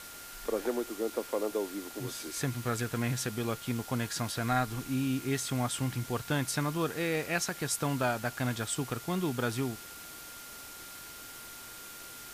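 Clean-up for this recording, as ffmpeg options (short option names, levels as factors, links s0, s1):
-af "bandreject=f=1400:w=30,afwtdn=0.005"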